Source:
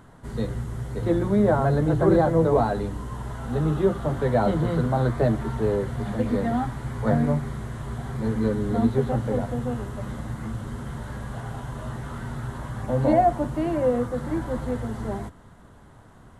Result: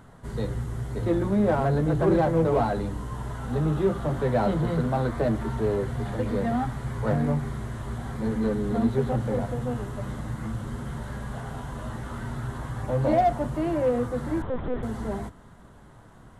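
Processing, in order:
in parallel at −4.5 dB: hard clipping −24.5 dBFS, distortion −6 dB
on the sum: flanger 0.15 Hz, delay 1.4 ms, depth 5.5 ms, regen −76%
0:14.42–0:14.83: linear-prediction vocoder at 8 kHz pitch kept

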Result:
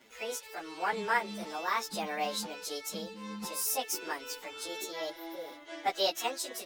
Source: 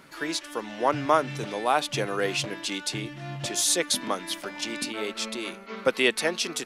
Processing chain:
phase-vocoder pitch shift without resampling +7 semitones
healed spectral selection 0:05.13–0:05.50, 1,300–12,000 Hz after
level −4 dB

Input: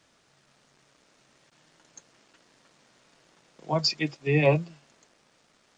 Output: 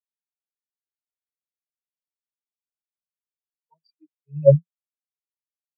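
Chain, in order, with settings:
in parallel at −1 dB: brickwall limiter −20 dBFS, peak gain reduction 10.5 dB
on the sum: phase shifter 0.89 Hz, delay 3.4 ms, feedback 64%
every bin expanded away from the loudest bin 4 to 1
level −2 dB

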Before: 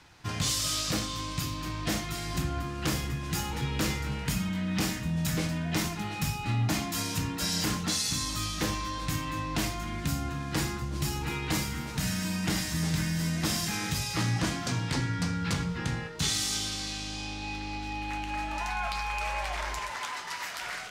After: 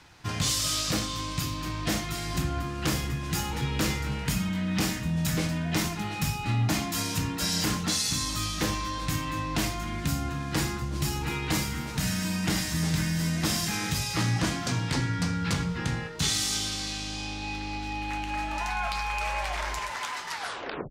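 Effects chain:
turntable brake at the end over 0.60 s
level +2 dB

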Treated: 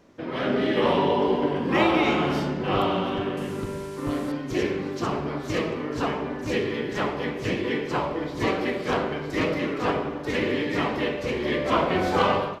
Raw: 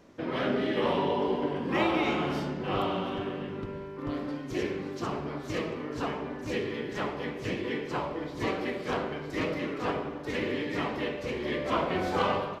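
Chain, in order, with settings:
0:03.37–0:04.32: linear delta modulator 64 kbit/s, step −45.5 dBFS
automatic gain control gain up to 6 dB

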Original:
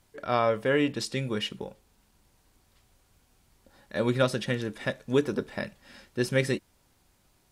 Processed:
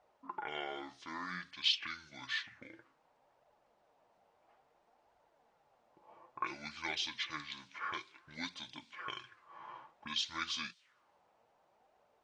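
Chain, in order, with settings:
change of speed 0.614×
envelope filter 730–3,900 Hz, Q 2.7, up, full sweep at −28 dBFS
flanger 0.58 Hz, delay 1.3 ms, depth 9.7 ms, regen +53%
level +11 dB

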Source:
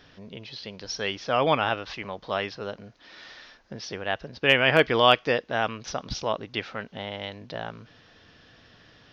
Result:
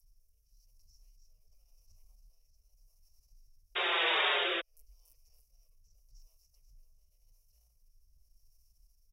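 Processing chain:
compressor on every frequency bin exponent 0.4
inverse Chebyshev band-stop filter 120–3,600 Hz, stop band 60 dB
parametric band 140 Hz −15 dB 1.2 octaves
on a send: echo with a time of its own for lows and highs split 2,700 Hz, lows 587 ms, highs 286 ms, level −7.5 dB
on the sum: sound drawn into the spectrogram noise, 0:03.75–0:04.61, 330–3,800 Hz −12 dBFS
transient designer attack −9 dB, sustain +3 dB
downward compressor 6 to 1, threshold −20 dBFS, peak gain reduction 10.5 dB
rotating-speaker cabinet horn 0.9 Hz
barber-pole flanger 5.3 ms −1.8 Hz
level −3 dB

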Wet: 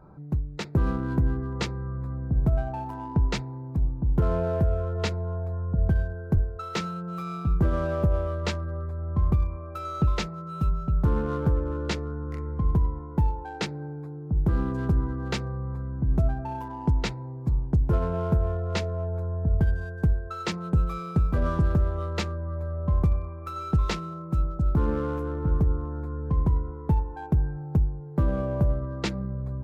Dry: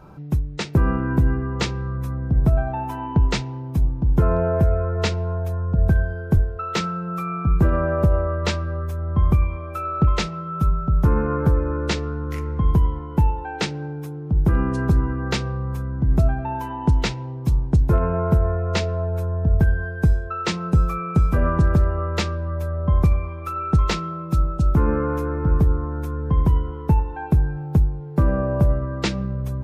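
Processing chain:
adaptive Wiener filter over 15 samples
level −5.5 dB

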